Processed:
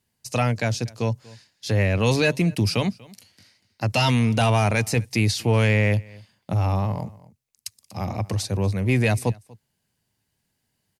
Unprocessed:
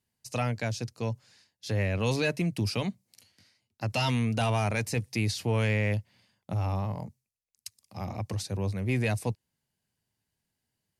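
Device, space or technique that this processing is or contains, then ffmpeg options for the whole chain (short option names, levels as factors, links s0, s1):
ducked delay: -filter_complex "[0:a]asplit=3[s0][s1][s2];[s1]adelay=240,volume=0.501[s3];[s2]apad=whole_len=495294[s4];[s3][s4]sidechaincompress=threshold=0.00501:ratio=5:attack=5.8:release=1100[s5];[s0][s5]amix=inputs=2:normalize=0,volume=2.37"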